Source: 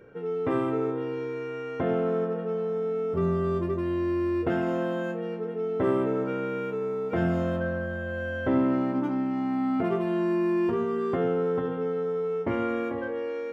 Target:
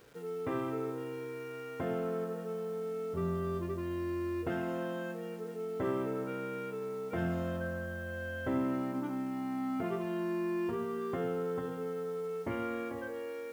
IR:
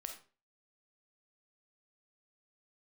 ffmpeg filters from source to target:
-af "equalizer=f=370:w=0.41:g=-3.5,acrusher=bits=8:mix=0:aa=0.000001,volume=0.531"

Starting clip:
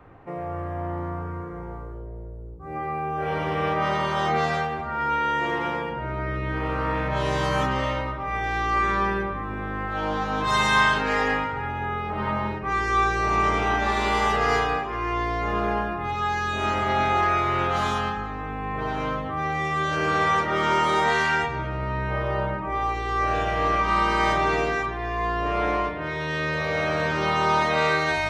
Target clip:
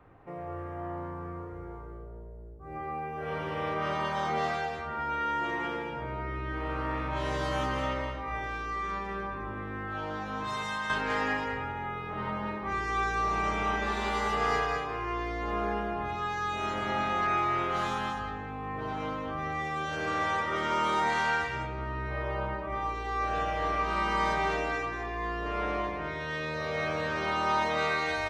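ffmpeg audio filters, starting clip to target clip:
-filter_complex "[0:a]asettb=1/sr,asplit=3[s0][s1][s2];[s0]atrim=end=8.424[s3];[s1]atrim=start=8.42:end=10.9,asetpts=PTS-STARTPTS,afade=t=in:d=0.004:c=qsin,afade=t=out:st=2.476:d=0.004:c=qsin,acompressor=threshold=0.0631:ratio=10[s4];[s2]atrim=start=10.896[s5];[s3][s4]acrossfade=d=0.004:c1=hsin:c2=qsin[s6];[s6][s5]acrossfade=d=0.004:c1=qsin:c2=hsin,aecho=1:1:203:0.501,volume=0.422"

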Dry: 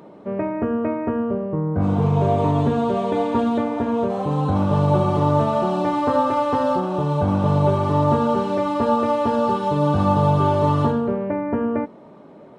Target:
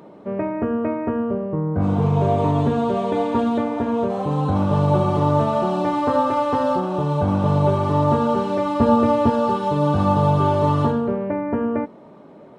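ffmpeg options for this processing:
-filter_complex "[0:a]asettb=1/sr,asplit=3[s0][s1][s2];[s0]atrim=end=8.804[s3];[s1]atrim=start=8.8:end=9.3,asetpts=PTS-STARTPTS,afade=t=in:d=0.004:c=qsin,afade=t=out:st=0.496:d=0.004:c=qsin,lowshelf=f=250:g=11.5[s4];[s2]atrim=start=9.296[s5];[s3][s4]acrossfade=d=0.004:c1=hsin:c2=qsin[s6];[s6][s5]acrossfade=d=0.004:c1=qsin:c2=hsin"

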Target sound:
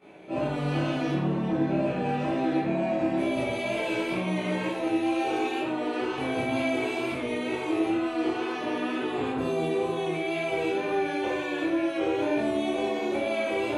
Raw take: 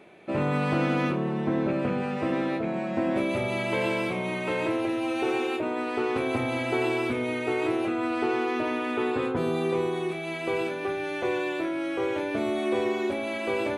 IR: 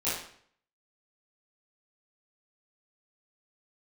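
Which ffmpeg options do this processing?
-filter_complex "[0:a]acrossover=split=3800[s0][s1];[s0]alimiter=level_in=1.06:limit=0.0631:level=0:latency=1:release=12,volume=0.944[s2];[s2][s1]amix=inputs=2:normalize=0,flanger=delay=22.5:depth=5.8:speed=2.1[s3];[1:a]atrim=start_sample=2205,asetrate=48510,aresample=44100[s4];[s3][s4]afir=irnorm=-1:irlink=0,volume=0.794"

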